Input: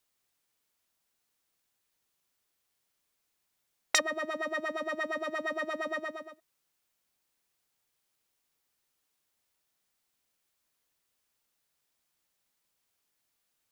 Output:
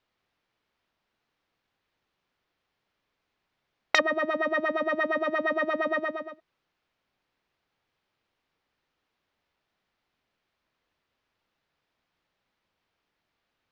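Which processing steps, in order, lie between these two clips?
air absorption 270 m; gain +8.5 dB

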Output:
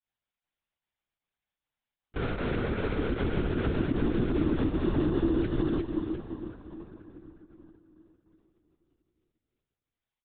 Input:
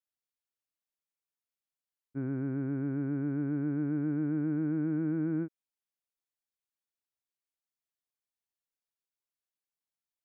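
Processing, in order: brick-wall FIR high-pass 290 Hz; comb 2.8 ms, depth 64%; in parallel at -7 dB: companded quantiser 2-bit; on the sum: plate-style reverb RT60 4.2 s, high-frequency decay 0.7×, DRR 9.5 dB; pump 153 bpm, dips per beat 1, -16 dB, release 87 ms; on a send: feedback echo 0.353 s, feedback 31%, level -5.5 dB; on the sum: compressor 3:1, threshold -32 dBFS, peak gain reduction 9 dB; LPC vocoder at 8 kHz whisper; gain +5.5 dB

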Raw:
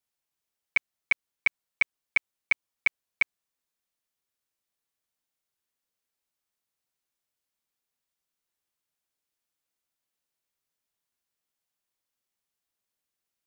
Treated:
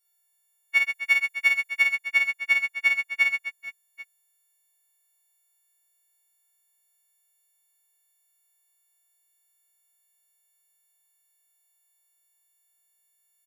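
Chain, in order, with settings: frequency quantiser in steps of 4 st; 0.77–1.82 high shelf 4900 Hz +4.5 dB; reverse bouncing-ball echo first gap 50 ms, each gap 1.6×, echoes 5; gain -2 dB

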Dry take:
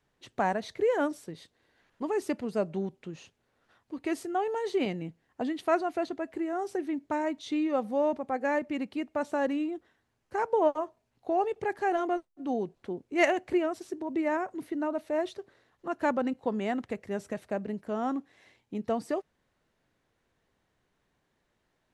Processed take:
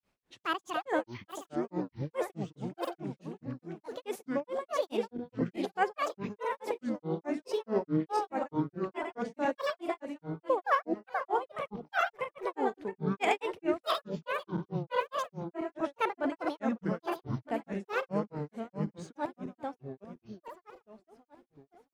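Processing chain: regenerating reverse delay 0.324 s, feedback 68%, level -3 dB; grains 0.192 s, grains 4.7/s, pitch spread up and down by 12 st; gain -1 dB

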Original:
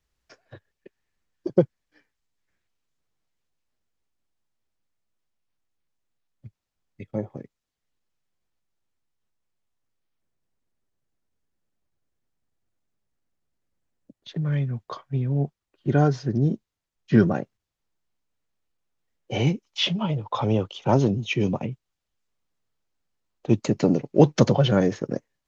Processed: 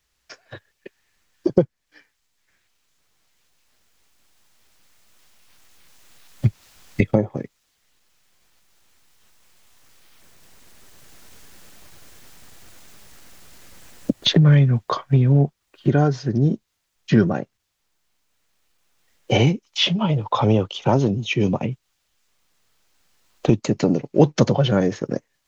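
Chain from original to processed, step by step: recorder AGC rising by 5.6 dB/s; mismatched tape noise reduction encoder only; gain +1 dB

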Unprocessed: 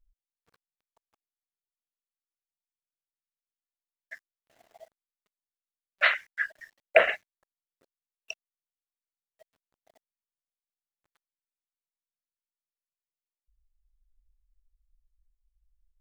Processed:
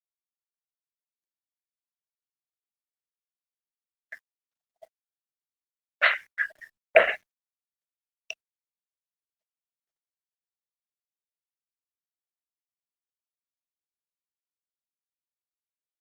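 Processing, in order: gate -48 dBFS, range -43 dB; gain +2 dB; Opus 48 kbps 48000 Hz

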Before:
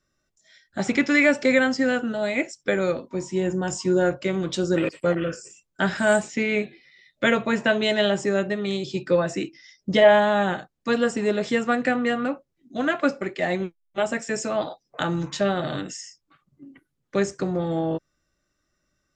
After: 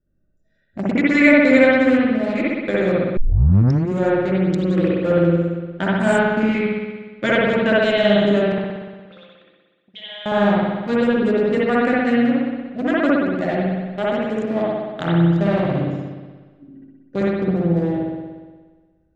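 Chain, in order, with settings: Wiener smoothing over 41 samples; 8.52–10.26 auto-wah 410–3400 Hz, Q 9.3, up, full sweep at -20.5 dBFS; low shelf 170 Hz +6 dB; spring tank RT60 1.4 s, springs 59 ms, chirp 40 ms, DRR -6.5 dB; 3.17 tape start 0.73 s; gain -1 dB

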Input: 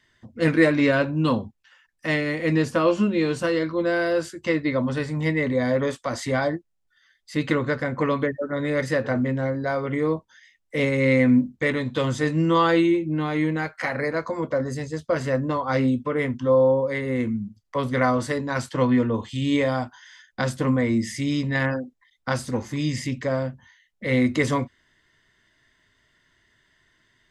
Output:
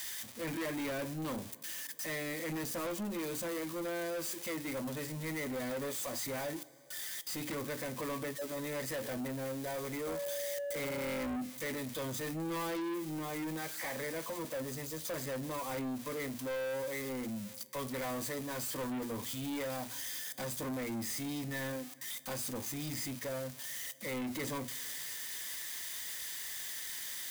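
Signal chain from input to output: switching spikes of -16 dBFS; notch 5300 Hz, Q 24; notch comb 1400 Hz; two-slope reverb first 0.21 s, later 3.3 s, from -18 dB, DRR 18 dB; 10.06–11.35 whine 570 Hz -23 dBFS; notches 60/120/180/240/300/360 Hz; soft clip -26.5 dBFS, distortion -7 dB; gain -8.5 dB

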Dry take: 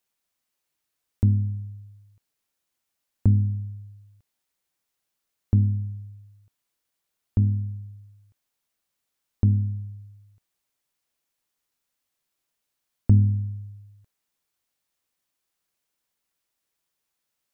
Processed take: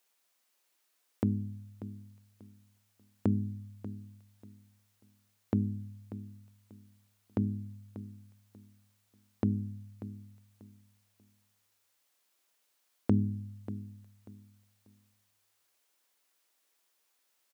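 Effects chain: HPF 320 Hz 12 dB/oct; feedback echo 0.589 s, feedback 25%, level -14 dB; gain +5.5 dB

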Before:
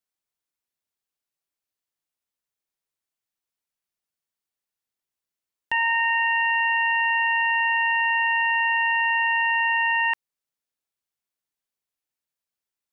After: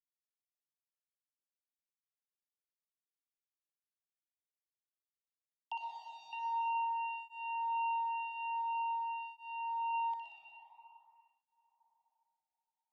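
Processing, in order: 5.77–6.33 median filter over 25 samples; steep high-pass 680 Hz 96 dB/oct; 8.61–9.94 dynamic EQ 1900 Hz, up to -5 dB, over -35 dBFS, Q 0.74; in parallel at +0.5 dB: compressor, threshold -33 dBFS, peak gain reduction 12 dB; on the sum: crossover distortion -58 dBFS; Butterworth band-stop 1700 Hz, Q 0.54; air absorption 220 m; thin delay 61 ms, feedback 69%, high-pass 2300 Hz, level -3.5 dB; digital reverb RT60 4 s, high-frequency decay 0.35×, pre-delay 65 ms, DRR -1 dB; tape flanging out of phase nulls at 0.48 Hz, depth 1 ms; gain -5 dB

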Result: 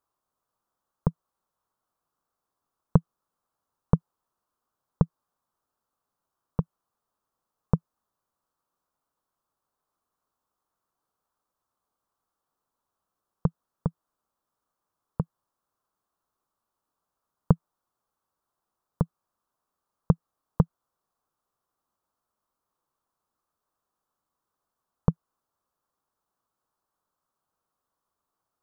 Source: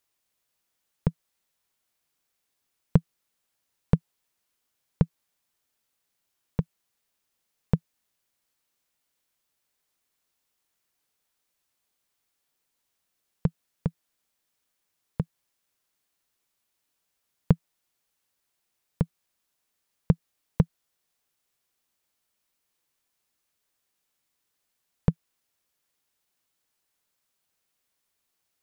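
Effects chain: resonant high shelf 1600 Hz -10.5 dB, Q 3

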